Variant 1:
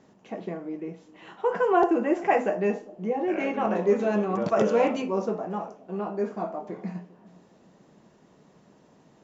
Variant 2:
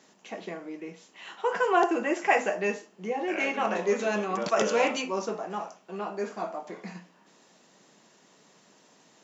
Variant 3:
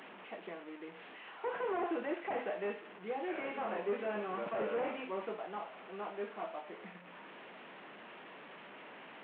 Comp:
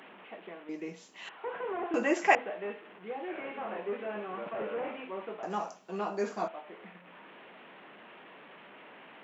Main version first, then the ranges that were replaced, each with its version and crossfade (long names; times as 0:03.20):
3
0:00.69–0:01.29: punch in from 2
0:01.94–0:02.35: punch in from 2
0:05.43–0:06.48: punch in from 2
not used: 1